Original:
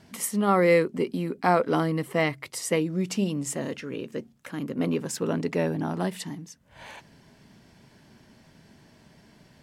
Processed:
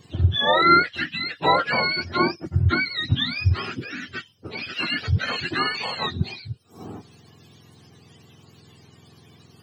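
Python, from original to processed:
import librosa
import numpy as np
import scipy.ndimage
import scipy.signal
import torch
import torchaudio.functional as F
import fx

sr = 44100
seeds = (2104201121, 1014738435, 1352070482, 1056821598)

y = fx.octave_mirror(x, sr, pivot_hz=840.0)
y = F.gain(torch.from_numpy(y), 5.0).numpy()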